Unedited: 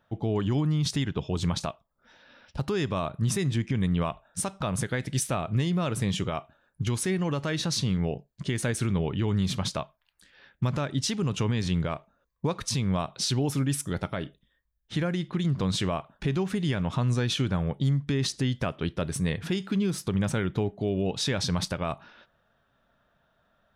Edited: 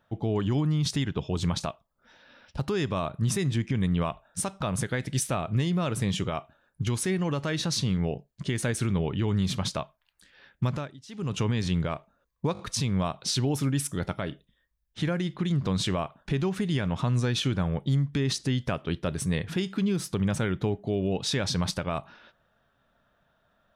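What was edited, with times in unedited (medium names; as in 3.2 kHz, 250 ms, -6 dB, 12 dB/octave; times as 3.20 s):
10.68–11.36 s: dip -21.5 dB, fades 0.29 s
12.53 s: stutter 0.02 s, 4 plays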